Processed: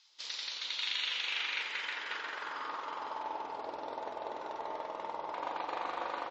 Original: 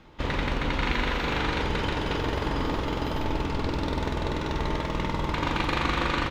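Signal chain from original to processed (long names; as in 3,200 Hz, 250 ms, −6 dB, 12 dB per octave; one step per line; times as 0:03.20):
bass and treble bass −14 dB, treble +14 dB
band-pass filter sweep 4,800 Hz → 730 Hz, 0:00.36–0:03.63
level −1.5 dB
MP3 32 kbit/s 32,000 Hz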